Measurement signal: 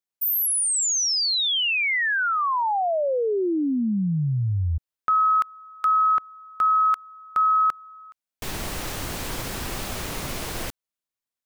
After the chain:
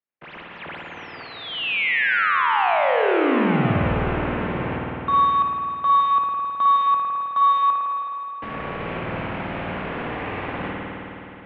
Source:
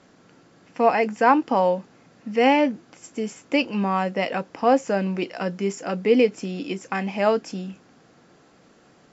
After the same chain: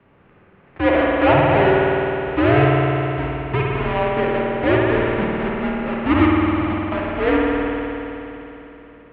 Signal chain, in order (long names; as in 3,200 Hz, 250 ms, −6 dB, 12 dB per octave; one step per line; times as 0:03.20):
each half-wave held at its own peak
single-sideband voice off tune −160 Hz 260–2,900 Hz
spring reverb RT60 3.4 s, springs 52 ms, chirp 30 ms, DRR −3.5 dB
level −3.5 dB